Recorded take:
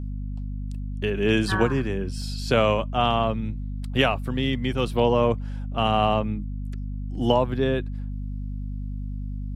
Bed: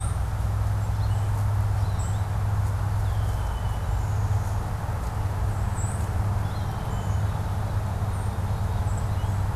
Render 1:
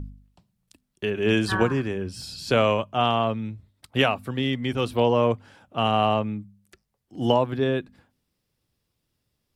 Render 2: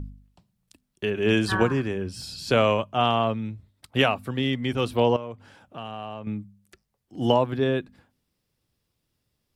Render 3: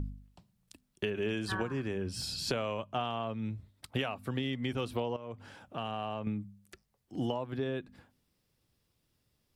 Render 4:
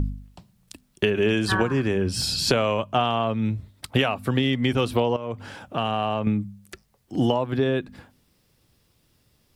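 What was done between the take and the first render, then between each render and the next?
de-hum 50 Hz, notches 5
5.16–6.27 s: compression 3:1, threshold -36 dBFS
compression 12:1, threshold -30 dBFS, peak gain reduction 16 dB
trim +12 dB

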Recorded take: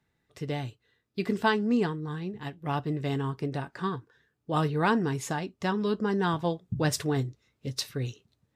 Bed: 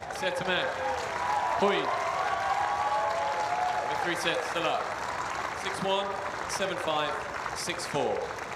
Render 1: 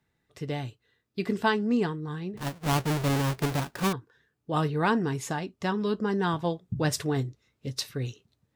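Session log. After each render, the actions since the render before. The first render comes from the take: 2.37–3.93 s: square wave that keeps the level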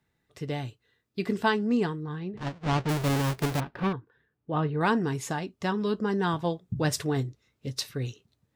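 2.03–2.89 s: distance through air 130 m; 3.60–4.81 s: distance through air 350 m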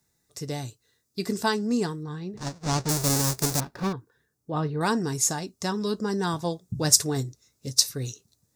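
resonant high shelf 4.1 kHz +13.5 dB, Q 1.5; band-stop 3.1 kHz, Q 14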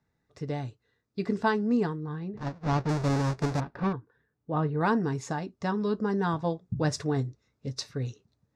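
low-pass 2.2 kHz 12 dB/octave; band-stop 360 Hz, Q 12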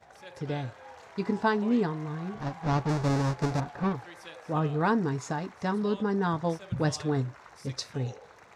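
add bed -17.5 dB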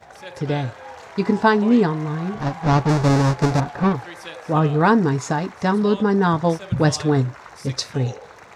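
trim +10 dB

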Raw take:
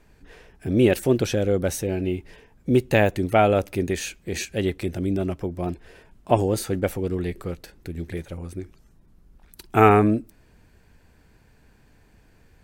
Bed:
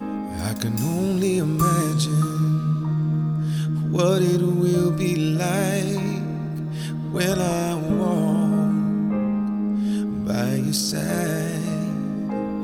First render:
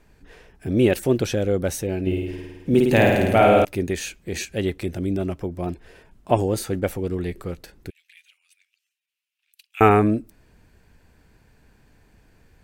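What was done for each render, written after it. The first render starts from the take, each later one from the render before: 2.01–3.65 s: flutter echo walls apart 9.1 m, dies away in 1.3 s; 7.90–9.81 s: ladder high-pass 2.4 kHz, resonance 65%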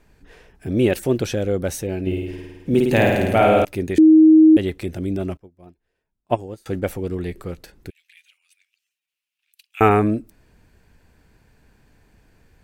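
3.98–4.57 s: bleep 315 Hz -6.5 dBFS; 5.37–6.66 s: upward expansion 2.5:1, over -32 dBFS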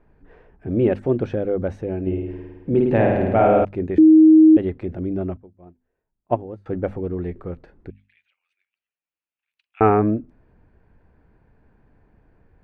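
low-pass 1.3 kHz 12 dB/octave; hum notches 50/100/150/200/250 Hz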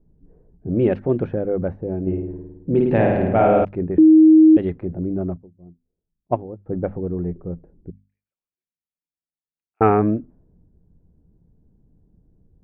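level-controlled noise filter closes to 310 Hz, open at -11.5 dBFS; peaking EQ 170 Hz +7.5 dB 0.22 oct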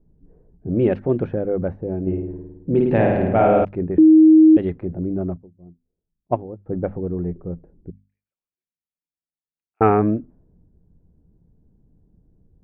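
no audible change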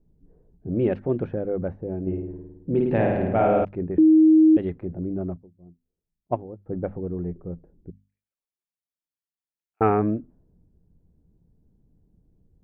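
trim -4.5 dB

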